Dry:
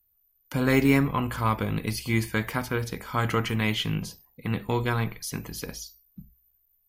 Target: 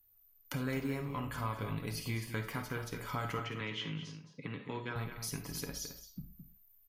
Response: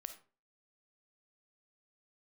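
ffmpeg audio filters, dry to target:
-filter_complex "[0:a]aecho=1:1:7.1:0.37,acompressor=threshold=-41dB:ratio=3,asettb=1/sr,asplit=3[a][b][c];[a]atrim=end=3.394[d];[b]atrim=start=3.39:end=4.96,asetpts=PTS-STARTPTS,afade=t=in:d=0.004:c=qsin,afade=t=out:st=1.566:d=0.004:c=qsin,highpass=f=130:w=0.5412,highpass=f=130:w=1.3066,equalizer=f=200:t=q:w=4:g=-4,equalizer=f=720:t=q:w=4:g=-9,equalizer=f=4.5k:t=q:w=4:g=-6,lowpass=f=5.8k:w=0.5412,lowpass=f=5.8k:w=1.3066[e];[c]atrim=start=4.956[f];[d][e]acrossfade=d=0.004:c1=hsin:c2=qsin[g];[g][f]acrossfade=d=0.004:c1=qsin:c2=hsin,asplit=2[h][i];[i]adelay=215.7,volume=-9dB,highshelf=f=4k:g=-4.85[j];[h][j]amix=inputs=2:normalize=0[k];[1:a]atrim=start_sample=2205,atrim=end_sample=6174[l];[k][l]afir=irnorm=-1:irlink=0,volume=5.5dB"

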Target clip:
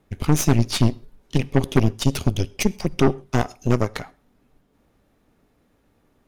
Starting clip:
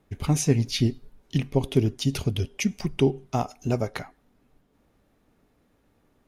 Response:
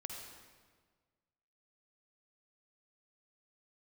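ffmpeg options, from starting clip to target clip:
-filter_complex "[0:a]aeval=exprs='0.473*(cos(1*acos(clip(val(0)/0.473,-1,1)))-cos(1*PI/2))+0.0422*(cos(3*acos(clip(val(0)/0.473,-1,1)))-cos(3*PI/2))+0.0473*(cos(5*acos(clip(val(0)/0.473,-1,1)))-cos(5*PI/2))+0.0211*(cos(7*acos(clip(val(0)/0.473,-1,1)))-cos(7*PI/2))+0.075*(cos(8*acos(clip(val(0)/0.473,-1,1)))-cos(8*PI/2))':c=same,asplit=2[a][b];[1:a]atrim=start_sample=2205,atrim=end_sample=6174[c];[b][c]afir=irnorm=-1:irlink=0,volume=-16.5dB[d];[a][d]amix=inputs=2:normalize=0,volume=2.5dB"

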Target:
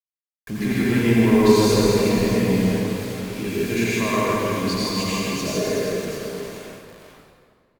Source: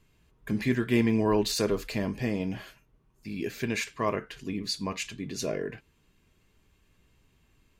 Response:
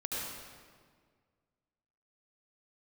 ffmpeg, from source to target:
-filter_complex "[0:a]aecho=1:1:160|368|638.4|989.9|1447:0.631|0.398|0.251|0.158|0.1,asoftclip=type=tanh:threshold=-16dB,acrusher=bits=6:mix=0:aa=0.000001[a];[1:a]atrim=start_sample=2205,asetrate=37926,aresample=44100[b];[a][b]afir=irnorm=-1:irlink=0,volume=2.5dB"

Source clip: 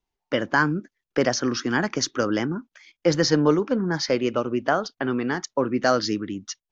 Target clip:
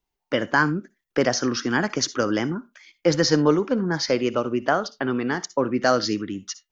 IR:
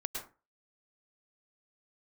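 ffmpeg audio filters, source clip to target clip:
-filter_complex "[0:a]asplit=2[a][b];[b]aemphasis=mode=production:type=bsi[c];[1:a]atrim=start_sample=2205,asetrate=79380,aresample=44100[d];[c][d]afir=irnorm=-1:irlink=0,volume=-12dB[e];[a][e]amix=inputs=2:normalize=0"

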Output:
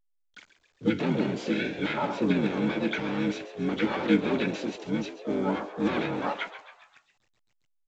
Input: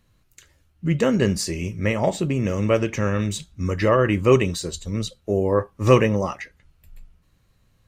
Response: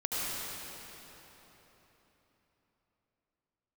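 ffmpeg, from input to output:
-filter_complex "[0:a]lowshelf=f=140:g=-7,alimiter=limit=-11.5dB:level=0:latency=1:release=196,asplit=2[a][b];[b]highpass=f=720:p=1,volume=19dB,asoftclip=type=tanh:threshold=-11.5dB[c];[a][c]amix=inputs=2:normalize=0,lowpass=f=5.1k:p=1,volume=-6dB,asoftclip=type=tanh:threshold=-16dB,asplit=3[d][e][f];[d]bandpass=f=300:t=q:w=8,volume=0dB[g];[e]bandpass=f=870:t=q:w=8,volume=-6dB[h];[f]bandpass=f=2.24k:t=q:w=8,volume=-9dB[i];[g][h][i]amix=inputs=3:normalize=0,acontrast=21,aeval=exprs='val(0)*gte(abs(val(0)),0.00237)':c=same,asplit=4[j][k][l][m];[k]asetrate=29433,aresample=44100,atempo=1.49831,volume=-1dB[n];[l]asetrate=37084,aresample=44100,atempo=1.18921,volume=-14dB[o];[m]asetrate=66075,aresample=44100,atempo=0.66742,volume=-5dB[p];[j][n][o][p]amix=inputs=4:normalize=0,asplit=2[q][r];[r]asplit=5[s][t][u][v][w];[s]adelay=135,afreqshift=110,volume=-13dB[x];[t]adelay=270,afreqshift=220,volume=-18.7dB[y];[u]adelay=405,afreqshift=330,volume=-24.4dB[z];[v]adelay=540,afreqshift=440,volume=-30dB[aa];[w]adelay=675,afreqshift=550,volume=-35.7dB[ab];[x][y][z][aa][ab]amix=inputs=5:normalize=0[ac];[q][ac]amix=inputs=2:normalize=0" -ar 16000 -c:a pcm_alaw

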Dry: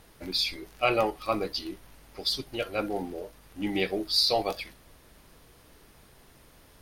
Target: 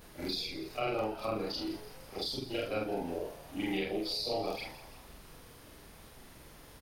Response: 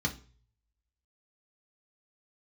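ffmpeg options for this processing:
-filter_complex "[0:a]afftfilt=real='re':imag='-im':win_size=4096:overlap=0.75,acrossover=split=100|470[a][b][c];[a]acompressor=threshold=-56dB:ratio=4[d];[b]acompressor=threshold=-43dB:ratio=4[e];[c]acompressor=threshold=-44dB:ratio=4[f];[d][e][f]amix=inputs=3:normalize=0,asplit=6[g][h][i][j][k][l];[h]adelay=166,afreqshift=100,volume=-15dB[m];[i]adelay=332,afreqshift=200,volume=-21dB[n];[j]adelay=498,afreqshift=300,volume=-27dB[o];[k]adelay=664,afreqshift=400,volume=-33.1dB[p];[l]adelay=830,afreqshift=500,volume=-39.1dB[q];[g][m][n][o][p][q]amix=inputs=6:normalize=0,volume=6.5dB"

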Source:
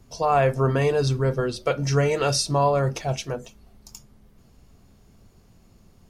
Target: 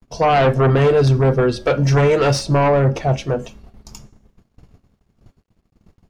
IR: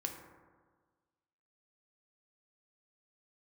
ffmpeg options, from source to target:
-af "aeval=exprs='0.335*sin(PI/2*2.24*val(0)/0.335)':c=same,agate=range=-36dB:threshold=-39dB:ratio=16:detection=peak,bandreject=f=274.3:t=h:w=4,bandreject=f=548.6:t=h:w=4,bandreject=f=822.9:t=h:w=4,bandreject=f=1.0972k:t=h:w=4,bandreject=f=1.3715k:t=h:w=4,bandreject=f=1.6458k:t=h:w=4,bandreject=f=1.9201k:t=h:w=4,bandreject=f=2.1944k:t=h:w=4,bandreject=f=2.4687k:t=h:w=4,bandreject=f=2.743k:t=h:w=4,bandreject=f=3.0173k:t=h:w=4,bandreject=f=3.2916k:t=h:w=4,bandreject=f=3.5659k:t=h:w=4,bandreject=f=3.8402k:t=h:w=4,bandreject=f=4.1145k:t=h:w=4,bandreject=f=4.3888k:t=h:w=4,bandreject=f=4.6631k:t=h:w=4,bandreject=f=4.9374k:t=h:w=4,bandreject=f=5.2117k:t=h:w=4,bandreject=f=5.486k:t=h:w=4,bandreject=f=5.7603k:t=h:w=4,bandreject=f=6.0346k:t=h:w=4,bandreject=f=6.3089k:t=h:w=4,bandreject=f=6.5832k:t=h:w=4,bandreject=f=6.8575k:t=h:w=4,bandreject=f=7.1318k:t=h:w=4,bandreject=f=7.4061k:t=h:w=4,bandreject=f=7.6804k:t=h:w=4,bandreject=f=7.9547k:t=h:w=4,bandreject=f=8.229k:t=h:w=4,bandreject=f=8.5033k:t=h:w=4,bandreject=f=8.7776k:t=h:w=4,bandreject=f=9.0519k:t=h:w=4,bandreject=f=9.3262k:t=h:w=4,bandreject=f=9.6005k:t=h:w=4,bandreject=f=9.8748k:t=h:w=4,bandreject=f=10.1491k:t=h:w=4,bandreject=f=10.4234k:t=h:w=4,bandreject=f=10.6977k:t=h:w=4,acrusher=bits=11:mix=0:aa=0.000001,asetnsamples=n=441:p=0,asendcmd='2.39 lowpass f 1300;3.39 lowpass f 2700',lowpass=f=2.3k:p=1"

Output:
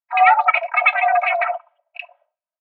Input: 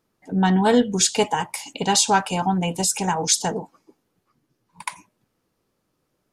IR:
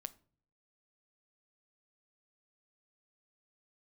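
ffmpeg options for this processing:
-filter_complex "[0:a]asetrate=107163,aresample=44100,aecho=1:1:3:0.94,highpass=f=210:t=q:w=0.5412,highpass=f=210:t=q:w=1.307,lowpass=f=2.6k:t=q:w=0.5176,lowpass=f=2.6k:t=q:w=0.7071,lowpass=f=2.6k:t=q:w=1.932,afreqshift=310,agate=range=-33dB:threshold=-53dB:ratio=3:detection=peak,asetrate=42845,aresample=44100,atempo=1.0293,equalizer=f=700:t=o:w=0.46:g=9.5,acrossover=split=800[a][b];[a]adelay=70[c];[c][b]amix=inputs=2:normalize=0,asplit=2[d][e];[1:a]atrim=start_sample=2205[f];[e][f]afir=irnorm=-1:irlink=0,volume=-6dB[g];[d][g]amix=inputs=2:normalize=0"

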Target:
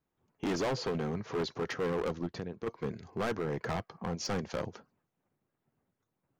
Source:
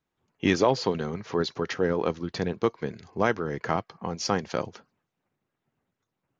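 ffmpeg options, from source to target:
-filter_complex "[0:a]equalizer=f=4k:t=o:w=2.9:g=-7,asplit=3[a][b][c];[a]afade=t=out:st=2.26:d=0.02[d];[b]acompressor=threshold=-36dB:ratio=5,afade=t=in:st=2.26:d=0.02,afade=t=out:st=2.66:d=0.02[e];[c]afade=t=in:st=2.66:d=0.02[f];[d][e][f]amix=inputs=3:normalize=0,volume=28.5dB,asoftclip=hard,volume=-28.5dB"

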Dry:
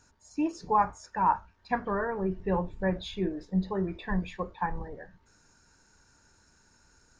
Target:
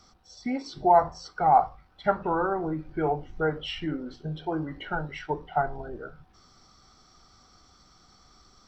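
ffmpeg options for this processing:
-filter_complex "[0:a]bandreject=f=50:t=h:w=6,bandreject=f=100:t=h:w=6,bandreject=f=150:t=h:w=6,bandreject=f=200:t=h:w=6,acrossover=split=430|1000[a][b][c];[a]acompressor=threshold=-40dB:ratio=6[d];[d][b][c]amix=inputs=3:normalize=0,asetrate=36603,aresample=44100,volume=5.5dB"

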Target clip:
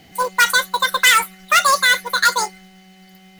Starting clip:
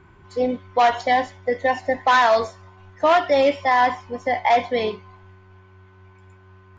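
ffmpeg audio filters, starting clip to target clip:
-af "asetrate=88200,aresample=44100,aemphasis=mode=production:type=50fm,acrusher=bits=4:mode=log:mix=0:aa=0.000001,volume=2dB"

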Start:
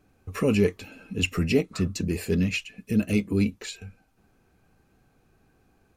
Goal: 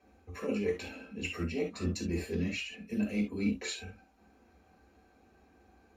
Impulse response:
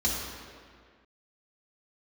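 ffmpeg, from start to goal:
-filter_complex "[0:a]bass=f=250:g=-13,treble=f=4k:g=-9,areverse,acompressor=threshold=-37dB:ratio=5,areverse[a];[1:a]atrim=start_sample=2205,atrim=end_sample=3528[b];[a][b]afir=irnorm=-1:irlink=0,volume=-4.5dB"

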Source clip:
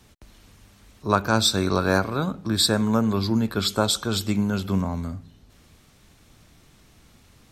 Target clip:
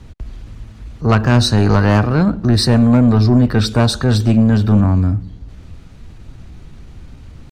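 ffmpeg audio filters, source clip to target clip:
-af "asetrate=48091,aresample=44100,atempo=0.917004,aemphasis=mode=reproduction:type=bsi,asoftclip=type=tanh:threshold=-13.5dB,volume=8.5dB"

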